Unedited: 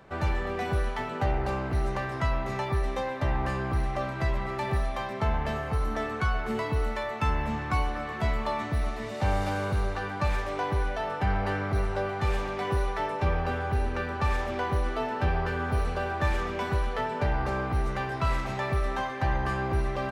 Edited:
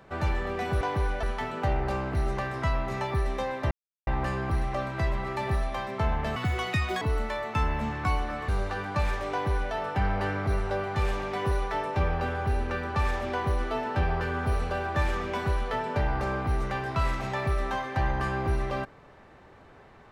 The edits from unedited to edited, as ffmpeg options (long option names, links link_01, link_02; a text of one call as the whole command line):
ffmpeg -i in.wav -filter_complex "[0:a]asplit=7[link_01][link_02][link_03][link_04][link_05][link_06][link_07];[link_01]atrim=end=0.812[link_08];[link_02]atrim=start=10.568:end=10.992[link_09];[link_03]atrim=start=0.808:end=3.29,asetpts=PTS-STARTPTS,afade=type=out:start_time=2.478:duration=0.004:curve=hsin,apad=pad_dur=0.36[link_10];[link_04]atrim=start=3.29:end=5.584,asetpts=PTS-STARTPTS,afade=type=in:duration=0.004:curve=hsin[link_11];[link_05]atrim=start=5.58:end=6.68,asetpts=PTS-STARTPTS,asetrate=74088,aresample=44100[link_12];[link_06]atrim=start=6.676:end=8.152[link_13];[link_07]atrim=start=9.738[link_14];[link_08][link_09]acrossfade=duration=0.004:curve1=hsin:curve2=hsin[link_15];[link_10][link_11]concat=n=2:v=0:a=1[link_16];[link_15][link_16]acrossfade=duration=0.004:curve1=hsin:curve2=hsin[link_17];[link_17][link_12]acrossfade=duration=0.004:curve1=hsin:curve2=hsin[link_18];[link_18][link_13]acrossfade=duration=0.004:curve1=hsin:curve2=hsin[link_19];[link_19][link_14]acrossfade=duration=0.004:curve1=hsin:curve2=hsin" out.wav